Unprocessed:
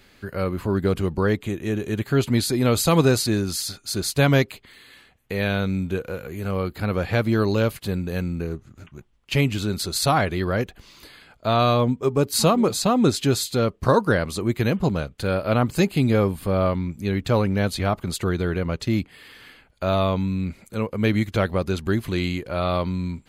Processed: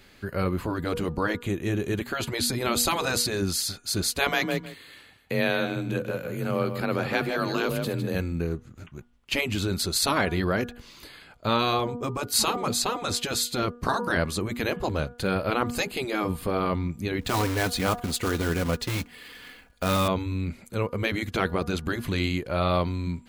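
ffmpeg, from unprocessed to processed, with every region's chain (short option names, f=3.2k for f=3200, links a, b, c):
-filter_complex "[0:a]asettb=1/sr,asplit=3[a][b][c];[a]atrim=end=4.274[d];[b]atrim=start=4.27:end=8.15,asetpts=PTS-STARTPTS,afade=t=in:d=0.004:c=qsin,afade=t=out:st=3.876:d=0.004:c=qsin,afreqshift=30,aecho=1:1:156|312:0.355|0.0568,atrim=end_sample=171108[e];[c]atrim=start=8.146[f];[d][e]acrossfade=d=0.004:c1=hsin:c2=qsin[g];[g][f]acrossfade=d=0.004:c1=qsin:c2=hsin,asettb=1/sr,asplit=3[h][i][j];[h]atrim=end=17.214[k];[i]atrim=start=17.21:end=20.08,asetpts=PTS-STARTPTS,afade=t=in:d=0.004:c=qsin,afade=t=out:st=2.866:d=0.004:c=qsin,aecho=1:1:4.1:0.43,atrim=end_sample=126567,acrusher=bits=3:mode=log:mix=0:aa=0.000001[l];[j]atrim=start=20.076[m];[k][l]acrossfade=d=0.004:c1=hsin:c2=qsin[n];[n][m]acrossfade=d=0.004:c1=qsin:c2=hsin,bandreject=f=240.5:t=h:w=4,bandreject=f=481:t=h:w=4,bandreject=f=721.5:t=h:w=4,bandreject=f=962:t=h:w=4,bandreject=f=1.2025k:t=h:w=4,bandreject=f=1.443k:t=h:w=4,bandreject=f=1.6835k:t=h:w=4,afftfilt=real='re*lt(hypot(re,im),0.501)':imag='im*lt(hypot(re,im),0.501)':win_size=1024:overlap=0.75"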